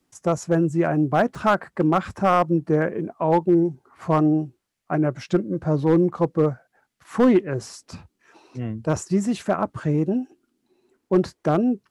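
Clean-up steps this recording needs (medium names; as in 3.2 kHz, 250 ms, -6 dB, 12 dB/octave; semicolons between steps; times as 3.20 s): clip repair -10 dBFS; interpolate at 1.35 s, 2.7 ms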